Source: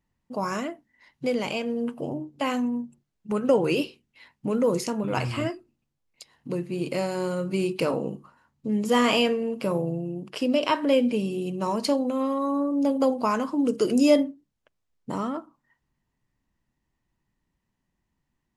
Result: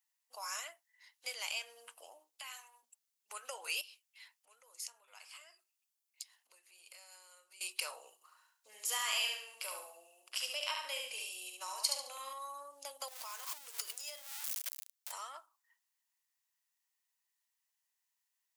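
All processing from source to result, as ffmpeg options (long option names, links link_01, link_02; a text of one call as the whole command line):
ffmpeg -i in.wav -filter_complex "[0:a]asettb=1/sr,asplit=3[link_01][link_02][link_03];[link_01]atrim=end=2.394[link_04];[link_02]atrim=start=2.39:end=2.83,asetpts=PTS-STARTPTS,afade=type=in:duration=0.004:curve=qsin,afade=type=out:start_time=0.436:duration=0.004:curve=qsin,highpass=820,equalizer=frequency=6200:width_type=o:width=0.31:gain=-3.5,acompressor=threshold=-36dB:ratio=6:attack=3.2:release=140:knee=1:detection=peak[link_05];[link_03]atrim=start=2.826[link_06];[link_04][link_05]acrossfade=duration=0.004:curve1=hsin:curve2=qsin[link_07];[link_07][link_06]acrossfade=duration=0.004:curve1=qsin:curve2=hsin,asettb=1/sr,asplit=3[link_08][link_09][link_10];[link_08]atrim=end=3.814[link_11];[link_09]atrim=start=3.81:end=7.61,asetpts=PTS-STARTPTS,afade=type=in:duration=0.004:curve=qsin,afade=type=out:start_time=3.796:duration=0.004:curve=qsin,bandreject=frequency=3900:width=26,acompressor=threshold=-41dB:ratio=6:attack=3.2:release=140:knee=1:detection=peak[link_12];[link_10]atrim=start=7.606[link_13];[link_11][link_12]acrossfade=duration=0.004:curve1=hsin:curve2=qsin[link_14];[link_14][link_13]acrossfade=duration=0.004:curve1=qsin:curve2=hsin,asettb=1/sr,asplit=3[link_15][link_16][link_17];[link_15]atrim=end=8.144[link_18];[link_16]atrim=start=8.14:end=12.33,asetpts=PTS-STARTPTS,afade=type=in:duration=0.004:curve=qsin,afade=type=out:start_time=4.186:duration=0.004:curve=qsin,asplit=2[link_19][link_20];[link_20]adelay=41,volume=-13dB[link_21];[link_19][link_21]amix=inputs=2:normalize=0,atrim=end_sample=184779,aecho=1:1:71|142|213|284:0.668|0.201|0.0602|0.018,atrim=end_sample=184779[link_22];[link_17]atrim=start=12.326[link_23];[link_18][link_22]acrossfade=duration=0.004:curve1=hsin:curve2=qsin[link_24];[link_24][link_23]acrossfade=duration=0.004:curve1=qsin:curve2=hsin,asettb=1/sr,asplit=3[link_25][link_26][link_27];[link_25]atrim=end=13.084[link_28];[link_26]atrim=start=13.08:end=15.12,asetpts=PTS-STARTPTS,afade=type=in:duration=0.004:curve=qsin,afade=type=out:start_time=2.036:duration=0.004:curve=qsin,aeval=exprs='val(0)+0.5*0.0335*sgn(val(0))':channel_layout=same,acompressor=threshold=-30dB:ratio=6:attack=3.2:release=140:knee=1:detection=peak[link_29];[link_27]atrim=start=15.116[link_30];[link_28][link_29]acrossfade=duration=0.004:curve1=hsin:curve2=qsin[link_31];[link_31][link_30]acrossfade=duration=0.004:curve1=qsin:curve2=hsin,highpass=frequency=640:width=0.5412,highpass=frequency=640:width=1.3066,acompressor=threshold=-30dB:ratio=2,aderivative,volume=4.5dB" out.wav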